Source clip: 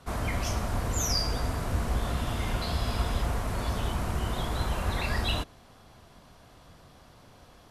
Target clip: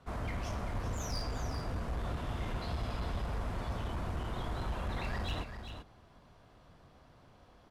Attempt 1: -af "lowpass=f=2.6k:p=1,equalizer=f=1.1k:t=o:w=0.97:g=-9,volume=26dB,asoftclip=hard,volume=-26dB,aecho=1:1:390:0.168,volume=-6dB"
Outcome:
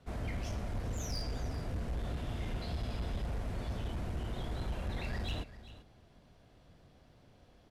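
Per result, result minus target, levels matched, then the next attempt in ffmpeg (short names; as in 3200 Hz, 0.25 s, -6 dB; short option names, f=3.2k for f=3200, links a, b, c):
1000 Hz band -5.0 dB; echo-to-direct -7 dB
-af "lowpass=f=2.6k:p=1,volume=26dB,asoftclip=hard,volume=-26dB,aecho=1:1:390:0.168,volume=-6dB"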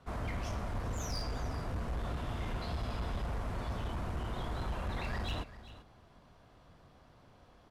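echo-to-direct -7 dB
-af "lowpass=f=2.6k:p=1,volume=26dB,asoftclip=hard,volume=-26dB,aecho=1:1:390:0.376,volume=-6dB"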